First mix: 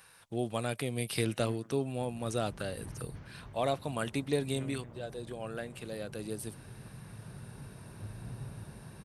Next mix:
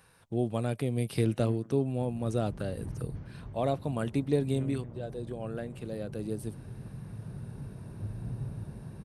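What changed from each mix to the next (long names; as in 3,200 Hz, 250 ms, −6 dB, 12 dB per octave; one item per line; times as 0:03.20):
master: add tilt shelving filter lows +6.5 dB, about 720 Hz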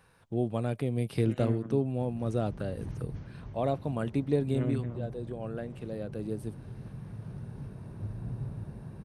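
first voice: add high-shelf EQ 3,900 Hz −8 dB
second voice +10.5 dB
background: add high-shelf EQ 2,800 Hz +9.5 dB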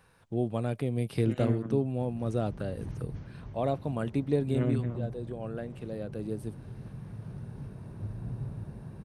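second voice +3.5 dB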